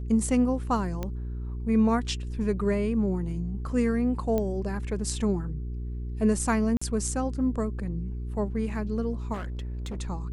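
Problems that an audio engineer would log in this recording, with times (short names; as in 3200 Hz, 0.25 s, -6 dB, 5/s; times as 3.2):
hum 60 Hz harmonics 7 -33 dBFS
1.03 pop -18 dBFS
4.38 pop -16 dBFS
6.77–6.82 gap 45 ms
9.33–10.01 clipped -30.5 dBFS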